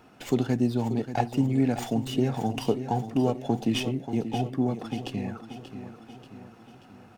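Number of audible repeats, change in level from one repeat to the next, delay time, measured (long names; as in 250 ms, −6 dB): 5, −5.5 dB, 584 ms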